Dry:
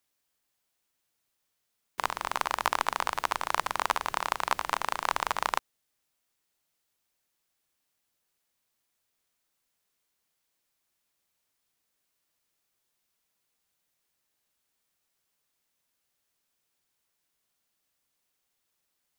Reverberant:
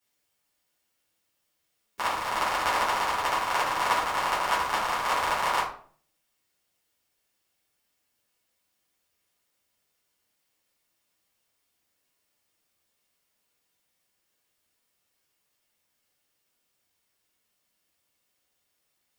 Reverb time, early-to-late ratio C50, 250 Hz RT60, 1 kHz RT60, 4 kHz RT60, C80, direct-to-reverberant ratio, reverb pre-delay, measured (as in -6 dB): 0.50 s, 5.0 dB, 0.65 s, 0.45 s, 0.35 s, 10.5 dB, -10.0 dB, 6 ms